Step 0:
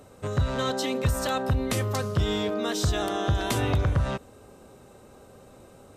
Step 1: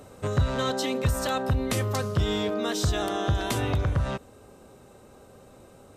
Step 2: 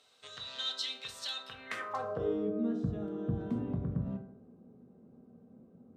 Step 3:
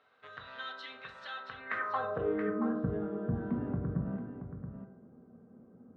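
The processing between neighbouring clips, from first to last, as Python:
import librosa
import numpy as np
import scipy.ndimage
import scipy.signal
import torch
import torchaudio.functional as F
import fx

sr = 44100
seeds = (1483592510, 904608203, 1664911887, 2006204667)

y1 = fx.rider(x, sr, range_db=10, speed_s=0.5)
y2 = fx.filter_sweep_bandpass(y1, sr, from_hz=3800.0, to_hz=210.0, start_s=1.44, end_s=2.51, q=2.9)
y2 = fx.rev_fdn(y2, sr, rt60_s=0.71, lf_ratio=1.0, hf_ratio=0.45, size_ms=13.0, drr_db=2.5)
y3 = fx.lowpass_res(y2, sr, hz=1600.0, q=2.2)
y3 = y3 + 10.0 ** (-9.0 / 20.0) * np.pad(y3, (int(677 * sr / 1000.0), 0))[:len(y3)]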